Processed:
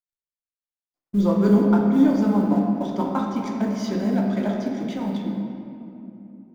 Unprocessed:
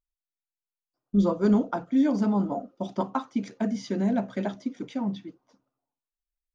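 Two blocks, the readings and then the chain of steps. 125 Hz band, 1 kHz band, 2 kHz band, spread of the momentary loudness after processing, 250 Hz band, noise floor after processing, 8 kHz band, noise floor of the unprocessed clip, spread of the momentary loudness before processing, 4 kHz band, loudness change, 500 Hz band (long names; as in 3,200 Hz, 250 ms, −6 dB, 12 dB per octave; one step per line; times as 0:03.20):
+6.5 dB, +4.0 dB, +4.0 dB, 18 LU, +6.0 dB, below −85 dBFS, can't be measured, below −85 dBFS, 11 LU, +4.5 dB, +5.5 dB, +5.0 dB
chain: mu-law and A-law mismatch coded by mu
noise gate with hold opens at −41 dBFS
rectangular room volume 120 cubic metres, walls hard, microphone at 0.41 metres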